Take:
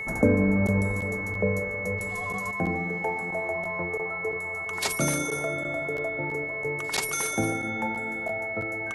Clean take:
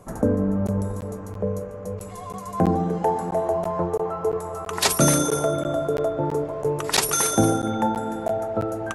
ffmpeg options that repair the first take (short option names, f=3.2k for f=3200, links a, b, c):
-af "bandreject=f=436.7:t=h:w=4,bandreject=f=873.4:t=h:w=4,bandreject=f=1.3101k:t=h:w=4,bandreject=f=1.7468k:t=h:w=4,bandreject=f=2.2k:w=30,asetnsamples=n=441:p=0,asendcmd='2.51 volume volume 8.5dB',volume=0dB"